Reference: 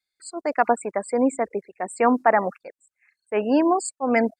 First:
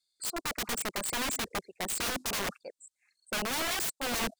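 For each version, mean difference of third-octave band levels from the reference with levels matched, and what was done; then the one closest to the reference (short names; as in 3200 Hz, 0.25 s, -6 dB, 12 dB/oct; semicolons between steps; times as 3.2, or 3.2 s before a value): 22.0 dB: in parallel at -10 dB: soft clip -19 dBFS, distortion -9 dB; on the sum: graphic EQ 2000/4000/8000 Hz -11/+10/+10 dB; wrapped overs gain 21 dB; gain -6 dB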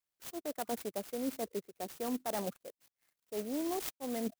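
16.0 dB: ten-band EQ 125 Hz +3 dB, 1000 Hz -7 dB, 2000 Hz -8 dB, 4000 Hz +4 dB; reverse; compressor, threshold -27 dBFS, peak gain reduction 11 dB; reverse; clock jitter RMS 0.098 ms; gain -6.5 dB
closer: second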